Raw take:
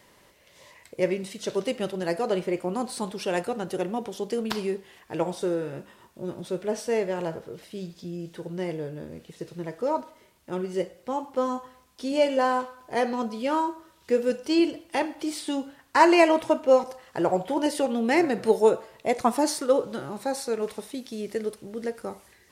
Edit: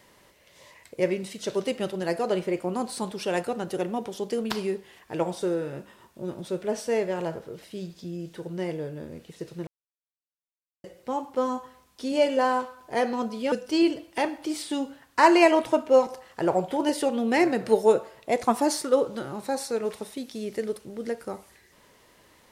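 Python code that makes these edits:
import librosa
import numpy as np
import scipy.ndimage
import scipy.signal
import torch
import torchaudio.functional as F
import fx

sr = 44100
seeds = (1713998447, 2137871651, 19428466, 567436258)

y = fx.edit(x, sr, fx.silence(start_s=9.67, length_s=1.17),
    fx.cut(start_s=13.52, length_s=0.77), tone=tone)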